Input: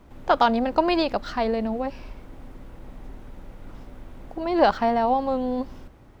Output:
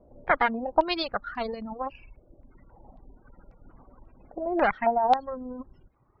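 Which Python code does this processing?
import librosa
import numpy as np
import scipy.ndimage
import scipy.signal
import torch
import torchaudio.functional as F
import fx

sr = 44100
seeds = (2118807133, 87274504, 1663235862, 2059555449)

y = fx.cheby_harmonics(x, sr, harmonics=(2, 4, 6, 7), levels_db=(-16, -44, -21, -39), full_scale_db=-5.0)
y = fx.spec_gate(y, sr, threshold_db=-30, keep='strong')
y = fx.dereverb_blind(y, sr, rt60_s=1.5)
y = fx.filter_held_lowpass(y, sr, hz=3.7, low_hz=590.0, high_hz=5300.0)
y = y * librosa.db_to_amplitude(-7.0)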